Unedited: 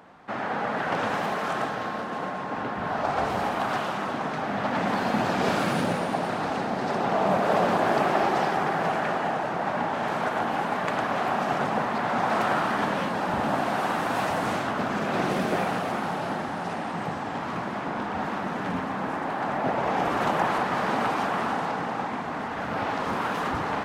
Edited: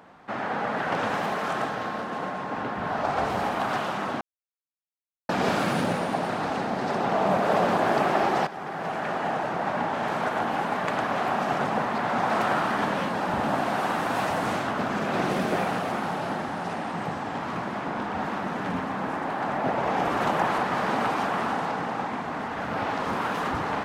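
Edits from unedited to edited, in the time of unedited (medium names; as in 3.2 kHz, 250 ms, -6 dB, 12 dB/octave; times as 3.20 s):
4.21–5.29 s: mute
8.47–9.35 s: fade in, from -14 dB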